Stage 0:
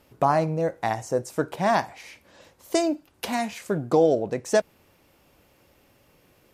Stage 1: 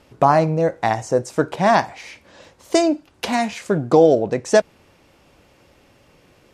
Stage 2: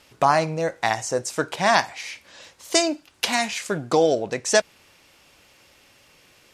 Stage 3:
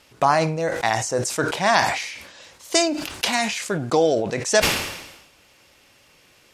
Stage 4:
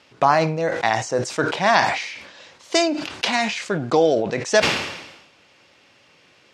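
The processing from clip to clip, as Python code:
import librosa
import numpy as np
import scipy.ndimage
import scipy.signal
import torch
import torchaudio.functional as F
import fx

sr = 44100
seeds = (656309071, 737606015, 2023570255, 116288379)

y1 = scipy.signal.sosfilt(scipy.signal.butter(2, 8100.0, 'lowpass', fs=sr, output='sos'), x)
y1 = y1 * librosa.db_to_amplitude(6.5)
y2 = fx.tilt_shelf(y1, sr, db=-7.5, hz=1200.0)
y2 = y2 * librosa.db_to_amplitude(-1.0)
y3 = fx.sustainer(y2, sr, db_per_s=57.0)
y4 = fx.bandpass_edges(y3, sr, low_hz=110.0, high_hz=5000.0)
y4 = y4 * librosa.db_to_amplitude(1.5)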